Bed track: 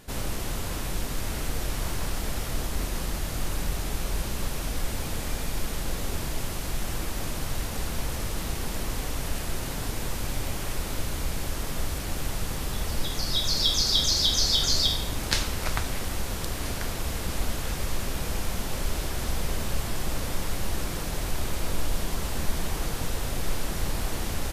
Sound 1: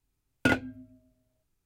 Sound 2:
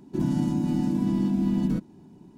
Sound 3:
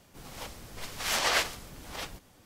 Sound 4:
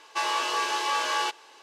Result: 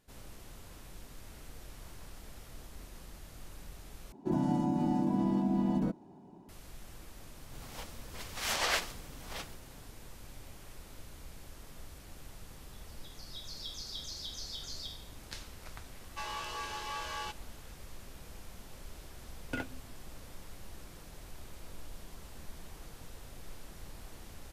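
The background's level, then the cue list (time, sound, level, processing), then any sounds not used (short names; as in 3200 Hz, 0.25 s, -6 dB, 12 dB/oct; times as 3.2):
bed track -19.5 dB
4.12 replace with 2 -8.5 dB + bell 720 Hz +14.5 dB 1.6 oct
7.37 add 3 -4.5 dB
16.01 add 4 -13 dB
19.08 add 1 -13.5 dB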